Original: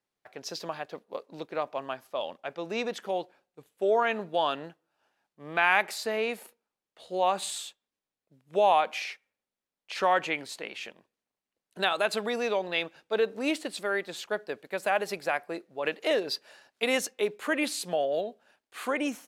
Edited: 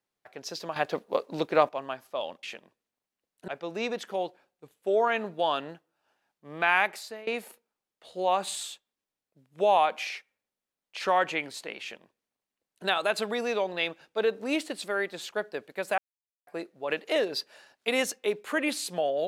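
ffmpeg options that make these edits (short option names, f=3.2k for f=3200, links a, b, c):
-filter_complex "[0:a]asplit=8[a][b][c][d][e][f][g][h];[a]atrim=end=0.762[i];[b]atrim=start=0.758:end=1.692,asetpts=PTS-STARTPTS,volume=9.5dB[j];[c]atrim=start=1.688:end=2.432[k];[d]atrim=start=10.758:end=11.812[l];[e]atrim=start=2.428:end=6.22,asetpts=PTS-STARTPTS,afade=t=out:st=3.272:d=0.52:silence=0.105925[m];[f]atrim=start=6.22:end=14.93,asetpts=PTS-STARTPTS,afade=t=in:d=0.004:c=hsin:silence=0.105925,afade=t=out:st=8.706:d=0.004:c=hsin[n];[g]atrim=start=14.93:end=15.42,asetpts=PTS-STARTPTS,volume=0[o];[h]atrim=start=15.42,asetpts=PTS-STARTPTS,afade=t=in:d=0.004:c=hsin[p];[i][j]acrossfade=d=0.004:c1=hsin:c2=hsin[q];[q][k]acrossfade=d=0.004:c1=hsin:c2=hsin[r];[r][l]acrossfade=d=0.004:c1=hsin:c2=hsin[s];[m][n][o][p]concat=n=4:v=0:a=1[t];[s][t]acrossfade=d=0.004:c1=hsin:c2=hsin"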